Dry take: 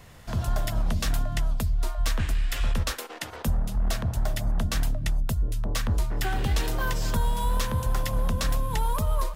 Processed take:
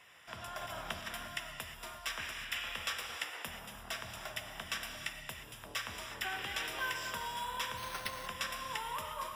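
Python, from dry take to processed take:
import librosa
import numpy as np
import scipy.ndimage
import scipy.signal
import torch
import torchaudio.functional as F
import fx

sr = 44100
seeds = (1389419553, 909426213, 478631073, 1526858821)

y = np.diff(x, prepend=0.0)
y = fx.over_compress(y, sr, threshold_db=-40.0, ratio=-0.5, at=(0.61, 1.08))
y = scipy.signal.savgol_filter(y, 25, 4, mode='constant')
y = fx.rev_gated(y, sr, seeds[0], gate_ms=380, shape='flat', drr_db=3.5)
y = fx.resample_bad(y, sr, factor=6, down='none', up='hold', at=(7.77, 8.27))
y = F.gain(torch.from_numpy(y), 8.5).numpy()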